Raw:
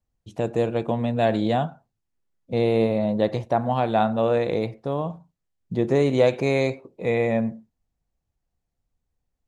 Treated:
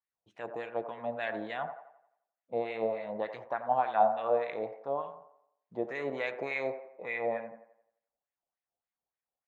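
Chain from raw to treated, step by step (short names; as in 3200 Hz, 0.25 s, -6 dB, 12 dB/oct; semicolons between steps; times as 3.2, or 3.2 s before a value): wah 3.4 Hz 650–2100 Hz, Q 2.8; band-limited delay 87 ms, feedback 44%, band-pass 790 Hz, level -9.5 dB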